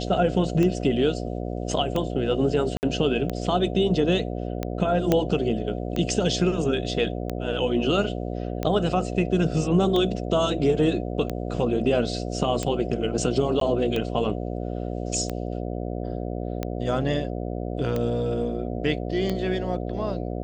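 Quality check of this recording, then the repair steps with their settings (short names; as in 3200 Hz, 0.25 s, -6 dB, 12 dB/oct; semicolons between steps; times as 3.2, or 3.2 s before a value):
buzz 60 Hz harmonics 12 -30 dBFS
tick 45 rpm -14 dBFS
2.77–2.83 gap 59 ms
5.12 pop -7 dBFS
13.6–13.61 gap 13 ms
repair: de-click; de-hum 60 Hz, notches 12; interpolate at 2.77, 59 ms; interpolate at 13.6, 13 ms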